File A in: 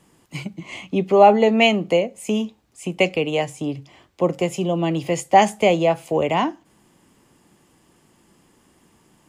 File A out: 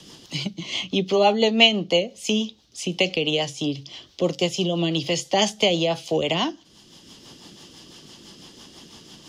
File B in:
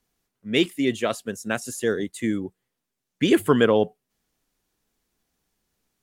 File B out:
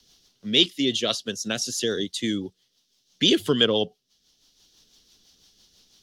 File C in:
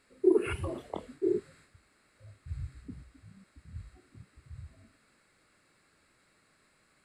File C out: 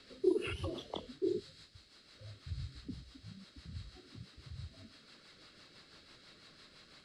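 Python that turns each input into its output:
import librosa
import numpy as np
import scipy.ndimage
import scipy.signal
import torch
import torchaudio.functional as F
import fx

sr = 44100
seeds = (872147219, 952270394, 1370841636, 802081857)

y = fx.band_shelf(x, sr, hz=4300.0, db=16.0, octaves=1.3)
y = fx.rotary(y, sr, hz=6.0)
y = fx.band_squash(y, sr, depth_pct=40)
y = y * librosa.db_to_amplitude(-1.0)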